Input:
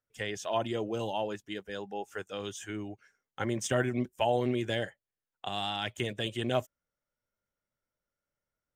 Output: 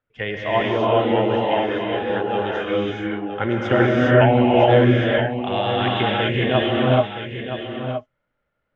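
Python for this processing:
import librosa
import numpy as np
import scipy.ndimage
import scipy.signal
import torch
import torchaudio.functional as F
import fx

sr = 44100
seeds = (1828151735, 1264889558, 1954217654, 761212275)

y = scipy.signal.sosfilt(scipy.signal.butter(4, 3000.0, 'lowpass', fs=sr, output='sos'), x)
y = y + 10.0 ** (-9.5 / 20.0) * np.pad(y, (int(969 * sr / 1000.0), 0))[:len(y)]
y = fx.rev_gated(y, sr, seeds[0], gate_ms=450, shape='rising', drr_db=-4.5)
y = y * 10.0 ** (9.0 / 20.0)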